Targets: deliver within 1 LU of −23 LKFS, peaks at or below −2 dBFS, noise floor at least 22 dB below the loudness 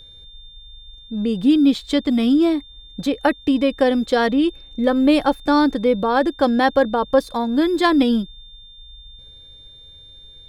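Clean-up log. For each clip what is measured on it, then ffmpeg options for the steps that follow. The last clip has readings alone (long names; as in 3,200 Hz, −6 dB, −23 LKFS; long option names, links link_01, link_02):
interfering tone 3,600 Hz; level of the tone −42 dBFS; integrated loudness −18.5 LKFS; sample peak −3.5 dBFS; target loudness −23.0 LKFS
→ -af "bandreject=frequency=3600:width=30"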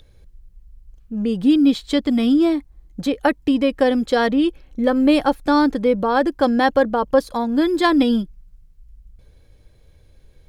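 interfering tone none found; integrated loudness −18.5 LKFS; sample peak −3.5 dBFS; target loudness −23.0 LKFS
→ -af "volume=-4.5dB"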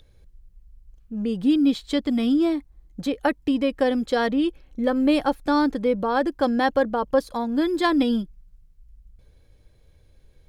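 integrated loudness −23.0 LKFS; sample peak −8.0 dBFS; background noise floor −56 dBFS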